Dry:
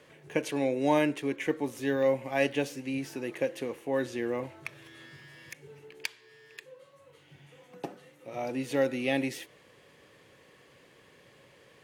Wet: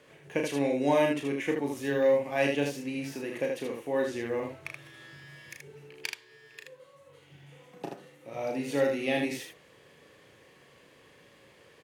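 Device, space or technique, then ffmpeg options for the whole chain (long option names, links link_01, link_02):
slapback doubling: -filter_complex "[0:a]asplit=3[link_01][link_02][link_03];[link_02]adelay=35,volume=-5dB[link_04];[link_03]adelay=78,volume=-4dB[link_05];[link_01][link_04][link_05]amix=inputs=3:normalize=0,volume=-1.5dB"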